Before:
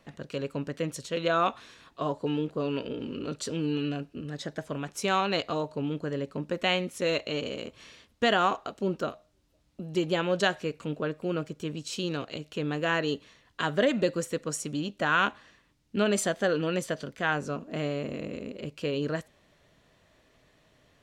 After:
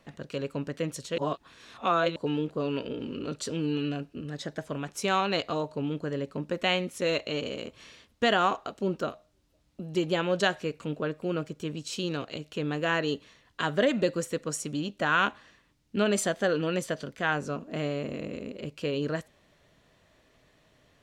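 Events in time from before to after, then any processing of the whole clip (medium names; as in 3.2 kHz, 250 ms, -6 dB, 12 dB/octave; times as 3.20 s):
1.18–2.16 s: reverse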